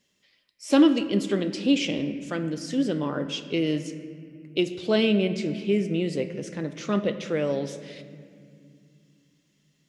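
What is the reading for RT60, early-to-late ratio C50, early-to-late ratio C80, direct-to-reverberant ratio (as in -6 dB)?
2.2 s, 11.0 dB, 11.5 dB, 9.5 dB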